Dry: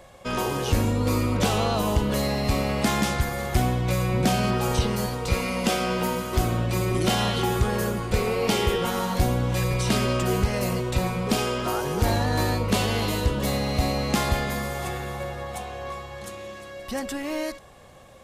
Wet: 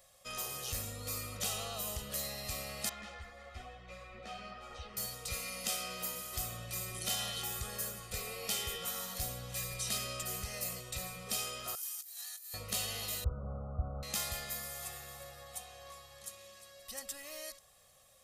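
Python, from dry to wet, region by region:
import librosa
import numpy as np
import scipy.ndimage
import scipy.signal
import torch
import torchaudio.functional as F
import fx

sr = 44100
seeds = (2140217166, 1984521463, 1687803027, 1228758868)

y = fx.chain(x, sr, fx.lowpass(hz=2400.0, slope=12),
    fx.peak_eq(hz=140.0, db=-15.0, octaves=0.66),
    fx.ensemble(), at=(2.89, 4.97))
y = fx.chain(y, sr, fx.highpass(hz=740.0, slope=24),
    fx.differentiator(),
    fx.over_compress(threshold_db=-41.0, ratio=-0.5), at=(11.75, 12.54))
y = fx.chain(y, sr, fx.delta_mod(bps=16000, step_db=-36.5),
    fx.brickwall_lowpass(high_hz=1500.0),
    fx.peak_eq(hz=69.0, db=11.0, octaves=2.5), at=(13.24, 14.03))
y = F.preemphasis(torch.from_numpy(y), 0.9).numpy()
y = y + 0.59 * np.pad(y, (int(1.6 * sr / 1000.0), 0))[:len(y)]
y = y * librosa.db_to_amplitude(-4.0)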